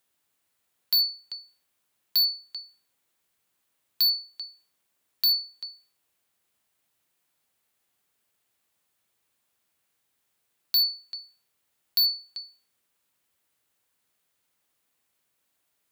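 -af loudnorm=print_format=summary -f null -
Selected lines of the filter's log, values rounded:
Input Integrated:    -23.8 LUFS
Input True Peak:     -15.2 dBTP
Input LRA:             3.1 LU
Input Threshold:     -36.5 LUFS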